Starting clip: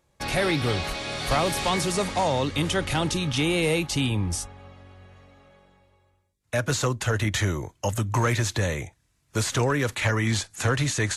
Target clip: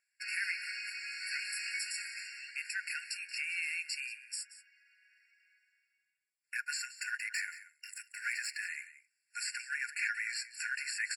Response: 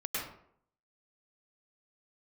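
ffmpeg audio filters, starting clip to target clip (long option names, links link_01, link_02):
-filter_complex "[0:a]asettb=1/sr,asplit=3[link_01][link_02][link_03];[link_01]atrim=end=7.024[link_04];[link_02]atrim=start=7.02:end=8.69,asetpts=PTS-STARTPTS,afade=type=in:duration=0.004:curve=qsin,afade=type=out:start_time=1.666:duration=0.004:curve=qsin,aeval=exprs='0.224*(cos(1*acos(clip(val(0)/0.224,-1,1)))-cos(1*PI/2))+0.00891*(cos(8*acos(clip(val(0)/0.224,-1,1)))-cos(8*PI/2))':channel_layout=same[link_05];[link_03]atrim=start=8.686[link_06];[link_04][link_05]acrossfade=duration=0.004:curve1=hsin:curve2=qsin[link_07];[link_07][link_06]acrossfade=duration=0.004:curve1=qsin:curve2=hsin,asplit=2[link_08][link_09];[link_09]aecho=0:1:180:0.168[link_10];[link_08][link_10]amix=inputs=2:normalize=0,afftfilt=real='re*eq(mod(floor(b*sr/1024/1400),2),1)':imag='im*eq(mod(floor(b*sr/1024/1400),2),1)':win_size=1024:overlap=0.75,volume=-5.5dB"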